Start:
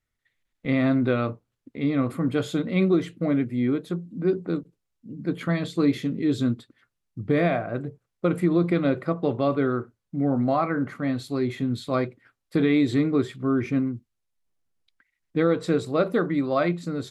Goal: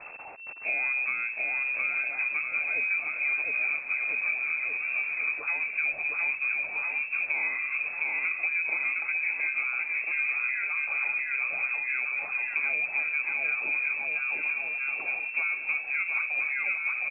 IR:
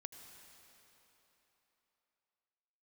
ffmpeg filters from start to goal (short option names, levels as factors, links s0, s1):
-filter_complex "[0:a]aeval=exprs='val(0)+0.5*0.0188*sgn(val(0))':c=same,aecho=1:1:710|1349|1924|2442|2908:0.631|0.398|0.251|0.158|0.1,acrossover=split=180|510[s0][s1][s2];[s0]acompressor=threshold=0.0158:ratio=4[s3];[s1]acompressor=threshold=0.0316:ratio=4[s4];[s2]acompressor=threshold=0.0126:ratio=4[s5];[s3][s4][s5]amix=inputs=3:normalize=0,lowpass=f=2300:t=q:w=0.5098,lowpass=f=2300:t=q:w=0.6013,lowpass=f=2300:t=q:w=0.9,lowpass=f=2300:t=q:w=2.563,afreqshift=-2700,volume=0.891"